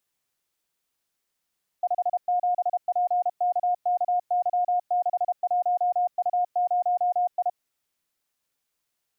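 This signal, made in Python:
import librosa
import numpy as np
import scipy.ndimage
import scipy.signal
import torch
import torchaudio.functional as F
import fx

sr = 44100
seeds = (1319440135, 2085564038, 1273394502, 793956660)

y = fx.morse(sr, text='57PKKY61U0I', wpm=32, hz=716.0, level_db=-20.0)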